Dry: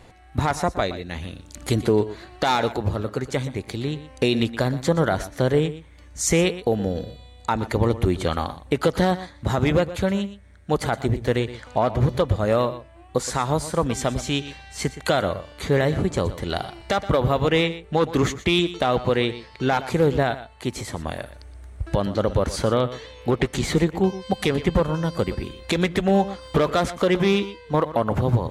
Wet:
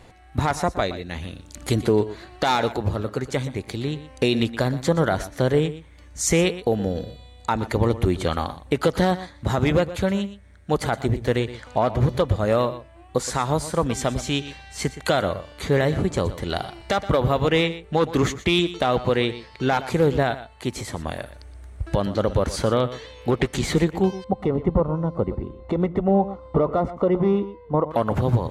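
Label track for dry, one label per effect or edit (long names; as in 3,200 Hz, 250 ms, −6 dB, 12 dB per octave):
24.240000	27.910000	Savitzky-Golay smoothing over 65 samples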